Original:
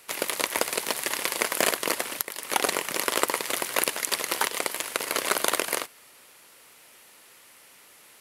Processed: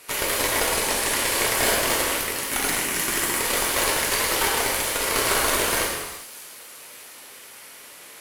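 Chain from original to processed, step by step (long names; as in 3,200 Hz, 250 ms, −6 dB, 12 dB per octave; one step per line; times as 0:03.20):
0:00.67–0:01.29: Chebyshev low-pass filter 11,000 Hz, order 2
gate on every frequency bin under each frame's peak −25 dB strong
0:02.48–0:03.40: octave-band graphic EQ 500/1,000/4,000 Hz −10/−6/−5 dB
tube saturation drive 24 dB, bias 0.45
on a send: delay with a high-pass on its return 605 ms, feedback 50%, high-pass 4,700 Hz, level −17 dB
on the sum: reverb whose tail is shaped and stops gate 430 ms falling, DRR −4 dB
level +5.5 dB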